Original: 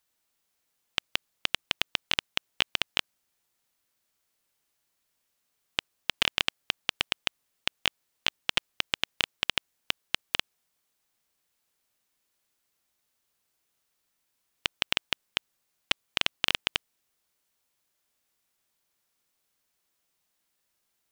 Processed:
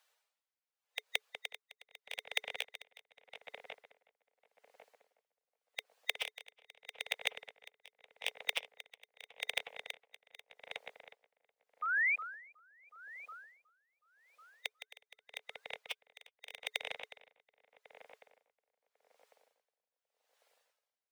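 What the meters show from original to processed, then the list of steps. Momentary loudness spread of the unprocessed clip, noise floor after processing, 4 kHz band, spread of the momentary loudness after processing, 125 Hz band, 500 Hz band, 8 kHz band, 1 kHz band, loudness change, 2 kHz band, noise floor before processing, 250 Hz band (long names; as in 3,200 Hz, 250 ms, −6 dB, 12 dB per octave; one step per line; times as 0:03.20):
8 LU, below −85 dBFS, −14.5 dB, 21 LU, below −25 dB, −7.0 dB, −10.0 dB, −7.5 dB, −9.5 dB, −5.5 dB, −78 dBFS, below −20 dB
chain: spectral magnitudes quantised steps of 15 dB
Chebyshev high-pass filter 430 Hz, order 8
gain into a clipping stage and back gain 21 dB
low-pass filter 3,400 Hz 6 dB per octave
floating-point word with a short mantissa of 2 bits
sound drawn into the spectrogram rise, 0:11.82–0:12.16, 1,200–2,500 Hz −35 dBFS
tape delay 366 ms, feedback 75%, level −9 dB, low-pass 2,200 Hz
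downward compressor 6 to 1, threshold −38 dBFS, peak gain reduction 8.5 dB
tremolo with a sine in dB 0.83 Hz, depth 25 dB
level +9.5 dB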